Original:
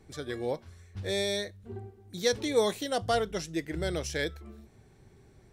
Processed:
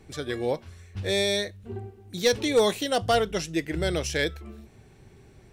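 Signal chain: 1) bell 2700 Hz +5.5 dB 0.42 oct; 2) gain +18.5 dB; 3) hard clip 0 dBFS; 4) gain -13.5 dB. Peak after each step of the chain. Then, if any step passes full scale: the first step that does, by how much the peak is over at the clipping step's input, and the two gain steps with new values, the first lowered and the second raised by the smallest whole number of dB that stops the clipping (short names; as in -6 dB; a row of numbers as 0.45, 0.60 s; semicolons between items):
-12.0, +6.5, 0.0, -13.5 dBFS; step 2, 6.5 dB; step 2 +11.5 dB, step 4 -6.5 dB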